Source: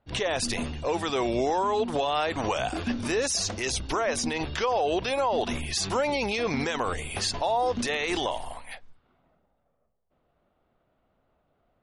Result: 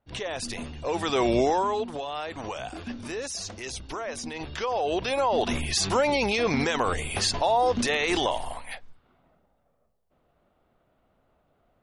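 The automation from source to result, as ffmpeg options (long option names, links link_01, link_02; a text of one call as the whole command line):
ffmpeg -i in.wav -af "volume=14.5dB,afade=type=in:start_time=0.73:duration=0.6:silence=0.334965,afade=type=out:start_time=1.33:duration=0.6:silence=0.266073,afade=type=in:start_time=4.29:duration=1.3:silence=0.316228" out.wav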